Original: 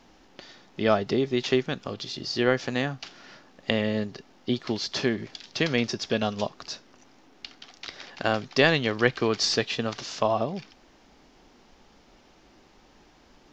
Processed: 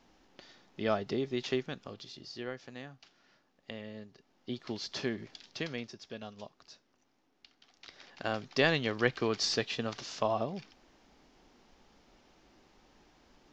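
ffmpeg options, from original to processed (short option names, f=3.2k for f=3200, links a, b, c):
-af "volume=12.5dB,afade=t=out:st=1.47:d=1.08:silence=0.316228,afade=t=in:st=4.15:d=0.66:silence=0.334965,afade=t=out:st=5.42:d=0.48:silence=0.354813,afade=t=in:st=7.55:d=1.15:silence=0.266073"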